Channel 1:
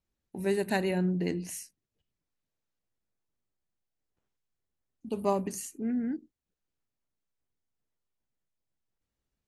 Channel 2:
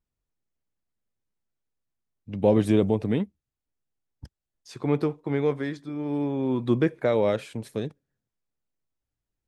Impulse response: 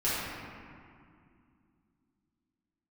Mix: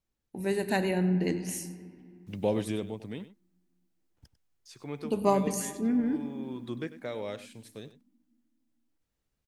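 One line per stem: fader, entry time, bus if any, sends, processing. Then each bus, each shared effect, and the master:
+2.0 dB, 0.00 s, send −20.5 dB, echo send −16.5 dB, speech leveller 2 s
0:02.11 −2 dB → 0:02.87 −15 dB, 0.00 s, no send, echo send −14.5 dB, high-shelf EQ 2,100 Hz +11.5 dB; bit-depth reduction 10 bits, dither none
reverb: on, RT60 2.3 s, pre-delay 4 ms
echo: single-tap delay 98 ms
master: no processing

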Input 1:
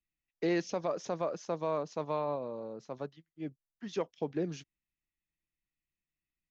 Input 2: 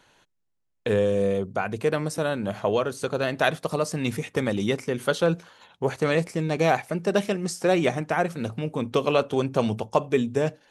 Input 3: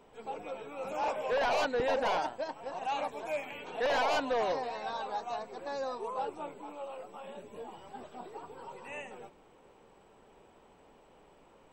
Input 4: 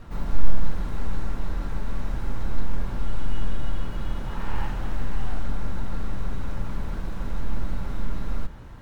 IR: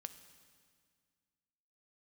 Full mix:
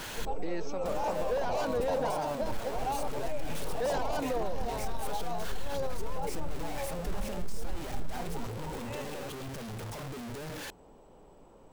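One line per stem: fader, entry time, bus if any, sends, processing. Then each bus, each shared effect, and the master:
−4.0 dB, 0.00 s, no send, no processing
−15.5 dB, 0.00 s, no send, sign of each sample alone
+3.0 dB, 0.00 s, send −6.5 dB, parametric band 2,300 Hz −11 dB 1.9 octaves
0:03.17 −17.5 dB → 0:03.69 −7 dB, 0.00 s, no send, gate pattern ".x...x.xx" 87 BPM −12 dB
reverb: on, RT60 1.9 s, pre-delay 3 ms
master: low-shelf EQ 90 Hz +6.5 dB; brickwall limiter −23 dBFS, peak gain reduction 11 dB

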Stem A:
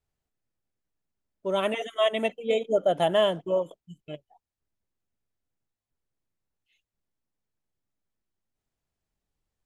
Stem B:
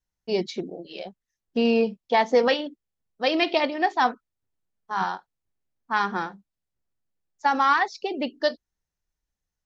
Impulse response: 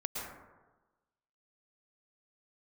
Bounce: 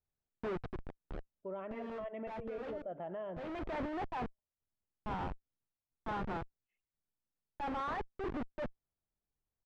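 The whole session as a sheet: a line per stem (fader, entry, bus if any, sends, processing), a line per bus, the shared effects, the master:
−9.5 dB, 0.00 s, muted 0:03.40–0:04.38, send −20 dB, low-pass filter 2,500 Hz 24 dB per octave; downward compressor, threshold −25 dBFS, peak gain reduction 7.5 dB
−4.5 dB, 0.15 s, no send, comparator with hysteresis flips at −29 dBFS; automatic ducking −11 dB, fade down 1.30 s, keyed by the first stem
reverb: on, RT60 1.2 s, pre-delay 102 ms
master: low-pass filter 1,800 Hz 12 dB per octave; brickwall limiter −34.5 dBFS, peak gain reduction 9.5 dB

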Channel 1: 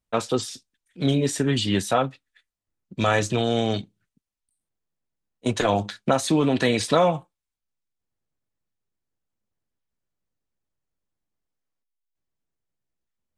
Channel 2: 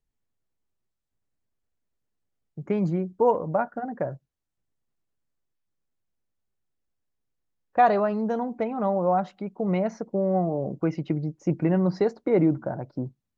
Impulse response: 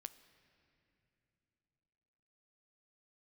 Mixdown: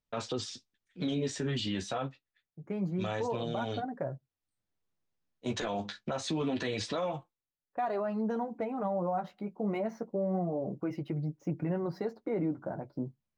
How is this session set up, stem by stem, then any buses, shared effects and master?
−1.0 dB, 0.00 s, no send, low-pass filter 6,600 Hz 24 dB per octave; automatic ducking −10 dB, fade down 0.60 s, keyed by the second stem
−4.5 dB, 0.00 s, no send, running median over 5 samples; high-pass filter 54 Hz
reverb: not used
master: speech leveller within 3 dB 0.5 s; flanger 0.26 Hz, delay 6.7 ms, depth 7.7 ms, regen −27%; brickwall limiter −24.5 dBFS, peak gain reduction 10.5 dB

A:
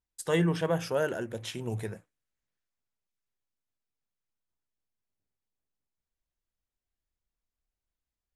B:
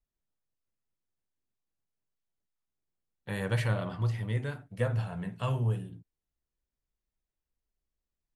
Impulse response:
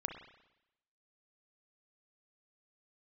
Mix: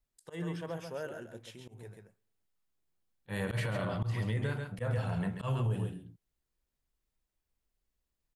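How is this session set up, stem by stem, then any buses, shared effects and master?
−12.5 dB, 0.00 s, send −17 dB, echo send −6.5 dB, automatic ducking −16 dB, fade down 1.90 s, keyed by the second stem
+3.0 dB, 0.00 s, no send, echo send −7.5 dB, no processing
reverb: on, RT60 0.90 s, pre-delay 32 ms
echo: single-tap delay 136 ms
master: parametric band 5,900 Hz −2 dB 0.2 octaves; volume swells 121 ms; brickwall limiter −24.5 dBFS, peak gain reduction 10.5 dB

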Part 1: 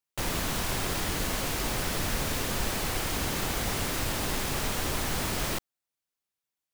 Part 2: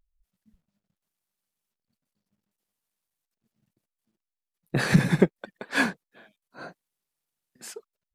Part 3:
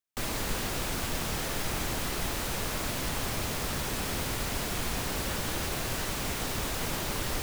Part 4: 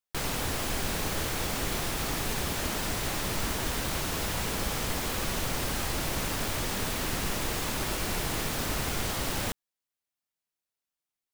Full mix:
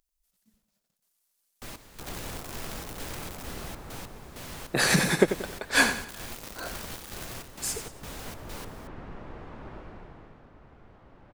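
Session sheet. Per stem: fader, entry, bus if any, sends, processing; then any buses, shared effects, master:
−13.0 dB, 1.80 s, muted 0:03.43–0:06.08, no send, echo send −6 dB, bit reduction 4 bits
+2.5 dB, 0.00 s, no send, echo send −10 dB, bass and treble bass −12 dB, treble +9 dB
−8.5 dB, 1.45 s, no send, no echo send, gate pattern ".x..xx.xx.xx.xx" 98 BPM −12 dB
0:09.76 −9 dB → 0:10.51 −20.5 dB, 1.85 s, no send, no echo send, low-pass filter 1,300 Hz 12 dB per octave; automatic ducking −9 dB, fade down 0.90 s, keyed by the second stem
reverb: not used
echo: repeating echo 91 ms, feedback 36%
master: no processing

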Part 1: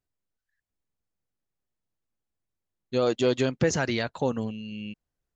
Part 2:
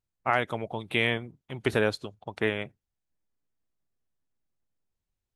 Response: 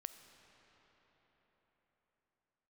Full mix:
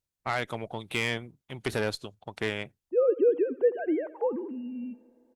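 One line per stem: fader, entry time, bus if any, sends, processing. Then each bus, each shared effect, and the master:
+0.5 dB, 0.00 s, send −13.5 dB, echo send −16.5 dB, three sine waves on the formant tracks; Bessel low-pass filter 650 Hz, order 2
−1.5 dB, 0.00 s, no send, no echo send, high-shelf EQ 3,200 Hz +7 dB; tube saturation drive 19 dB, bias 0.45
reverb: on, RT60 4.9 s, pre-delay 5 ms
echo: repeating echo 82 ms, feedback 38%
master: no processing

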